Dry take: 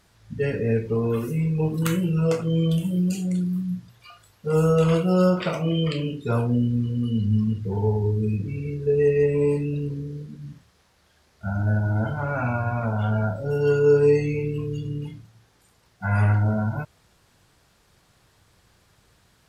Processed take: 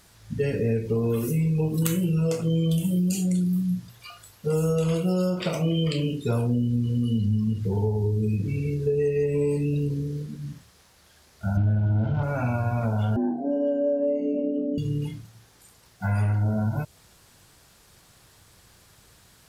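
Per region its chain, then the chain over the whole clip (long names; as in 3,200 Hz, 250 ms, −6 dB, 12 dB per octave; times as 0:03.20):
0:11.57–0:12.23: spike at every zero crossing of −27.5 dBFS + low-pass filter 3,100 Hz 24 dB per octave + low-shelf EQ 350 Hz +8 dB
0:13.16–0:14.78: moving average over 38 samples + frequency shifter +140 Hz
whole clip: high-shelf EQ 5,500 Hz +9 dB; downward compressor, threshold −23 dBFS; dynamic equaliser 1,400 Hz, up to −7 dB, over −46 dBFS, Q 0.88; level +3 dB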